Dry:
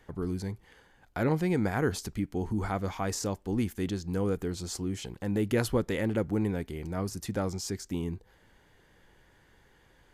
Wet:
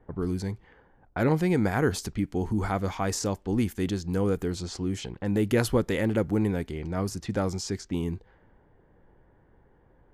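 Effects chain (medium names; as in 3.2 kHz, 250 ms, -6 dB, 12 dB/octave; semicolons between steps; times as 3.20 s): level-controlled noise filter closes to 800 Hz, open at -28.5 dBFS; trim +3.5 dB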